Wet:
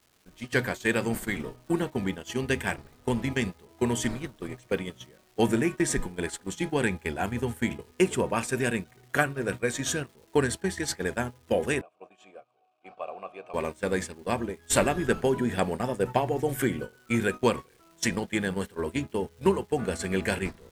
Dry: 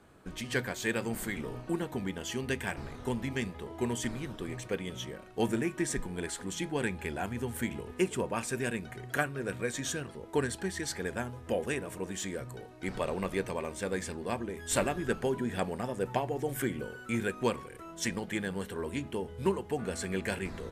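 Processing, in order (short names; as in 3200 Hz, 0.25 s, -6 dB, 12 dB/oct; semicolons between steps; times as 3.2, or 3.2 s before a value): gate -36 dBFS, range -19 dB; crackle 590/s -56 dBFS; 11.81–13.54 vowel filter a; gain +6 dB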